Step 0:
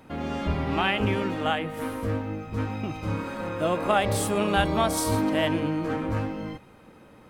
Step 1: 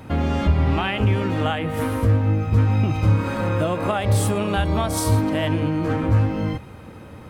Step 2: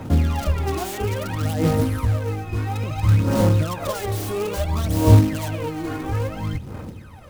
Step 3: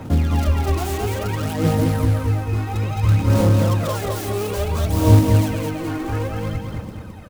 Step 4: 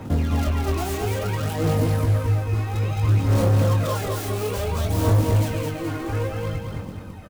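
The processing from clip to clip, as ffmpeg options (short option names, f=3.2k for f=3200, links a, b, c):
-af "acompressor=threshold=-29dB:ratio=6,equalizer=f=90:t=o:w=0.99:g=13,volume=8.5dB"
-filter_complex "[0:a]aphaser=in_gain=1:out_gain=1:delay=2.8:decay=0.78:speed=0.59:type=sinusoidal,acrossover=split=110|1100[a][b][c];[b]acrusher=bits=4:mode=log:mix=0:aa=0.000001[d];[c]aeval=exprs='(mod(15.8*val(0)+1,2)-1)/15.8':c=same[e];[a][d][e]amix=inputs=3:normalize=0,volume=-5.5dB"
-af "aecho=1:1:213|426|639|852:0.631|0.221|0.0773|0.0271"
-filter_complex "[0:a]asoftclip=type=hard:threshold=-13dB,asplit=2[a][b];[b]adelay=21,volume=-6dB[c];[a][c]amix=inputs=2:normalize=0,volume=-2.5dB"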